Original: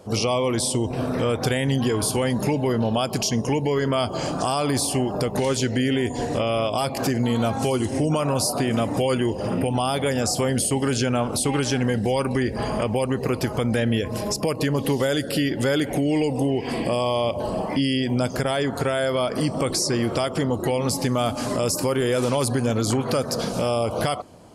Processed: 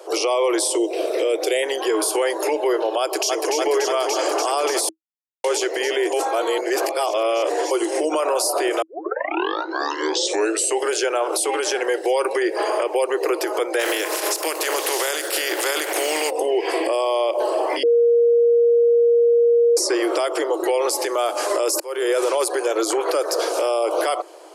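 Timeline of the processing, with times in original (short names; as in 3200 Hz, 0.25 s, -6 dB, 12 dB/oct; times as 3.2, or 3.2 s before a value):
0.78–1.63 band shelf 1200 Hz -12.5 dB 1.3 oct
3–3.55 echo throw 0.29 s, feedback 85%, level -2.5 dB
4.89–5.44 mute
6.13–7.71 reverse
8.82 tape start 1.99 s
13.79–16.29 spectral contrast lowered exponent 0.47
17.83–19.77 bleep 471 Hz -18 dBFS
21.8–22.24 fade in
whole clip: Chebyshev high-pass 320 Hz, order 8; dynamic EQ 3800 Hz, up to -4 dB, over -41 dBFS, Q 1.1; limiter -20 dBFS; gain +8 dB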